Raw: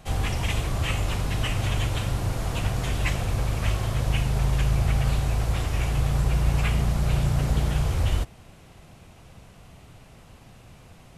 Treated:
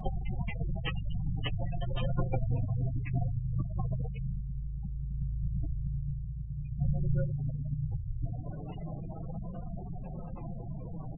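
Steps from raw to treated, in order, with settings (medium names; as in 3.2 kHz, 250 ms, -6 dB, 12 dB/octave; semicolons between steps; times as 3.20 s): tracing distortion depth 0.09 ms; 6.78–7.25 s: feedback comb 180 Hz, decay 0.5 s, harmonics all, mix 90%; on a send: delay 158 ms -24 dB; on the sum: compressor with a negative ratio -33 dBFS, ratio -1; 1.59–2.30 s: comb 5.7 ms, depth 75%; delay 109 ms -12 dB; spectral gate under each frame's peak -15 dB strong; flange 0.2 Hz, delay 5.4 ms, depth 2.5 ms, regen +13%; 4.62–5.13 s: dynamic bell 110 Hz, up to -5 dB, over -57 dBFS, Q 2.6; trim +5.5 dB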